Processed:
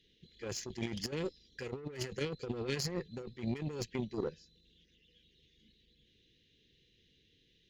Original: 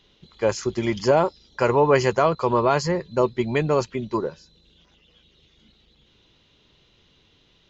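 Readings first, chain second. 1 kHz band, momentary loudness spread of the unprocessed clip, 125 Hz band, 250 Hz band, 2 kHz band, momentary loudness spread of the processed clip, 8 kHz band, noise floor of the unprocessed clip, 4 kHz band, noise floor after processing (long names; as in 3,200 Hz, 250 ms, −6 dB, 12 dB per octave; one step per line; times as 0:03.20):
−28.0 dB, 9 LU, −13.5 dB, −13.5 dB, −16.5 dB, 6 LU, can't be measured, −61 dBFS, −8.0 dB, −71 dBFS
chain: Chebyshev band-stop filter 500–1,700 Hz, order 4
harmonic generator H 7 −20 dB, 8 −38 dB, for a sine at −9.5 dBFS
compressor whose output falls as the input rises −33 dBFS, ratio −1
level −6 dB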